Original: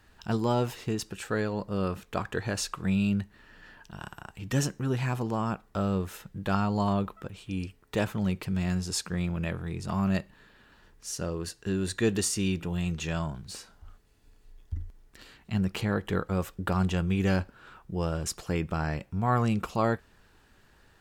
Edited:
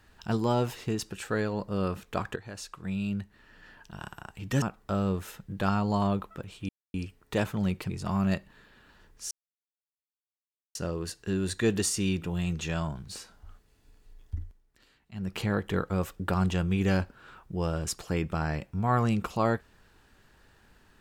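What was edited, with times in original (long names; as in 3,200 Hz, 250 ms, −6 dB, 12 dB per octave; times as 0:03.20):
0:02.36–0:03.98: fade in, from −13.5 dB
0:04.62–0:05.48: remove
0:07.55: splice in silence 0.25 s
0:08.51–0:09.73: remove
0:11.14: splice in silence 1.44 s
0:14.74–0:15.81: duck −12 dB, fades 0.26 s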